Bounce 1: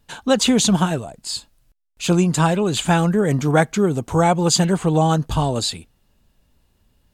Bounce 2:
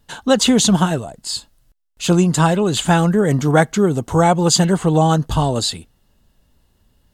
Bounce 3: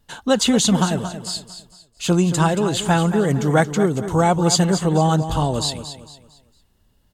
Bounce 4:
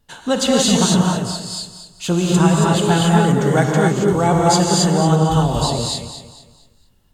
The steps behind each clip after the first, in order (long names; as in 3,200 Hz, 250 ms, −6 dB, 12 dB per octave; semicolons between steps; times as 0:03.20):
notch filter 2,400 Hz, Q 9; level +2.5 dB
repeating echo 227 ms, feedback 35%, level −11 dB; level −3 dB
reverb whose tail is shaped and stops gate 300 ms rising, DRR −2 dB; level −1.5 dB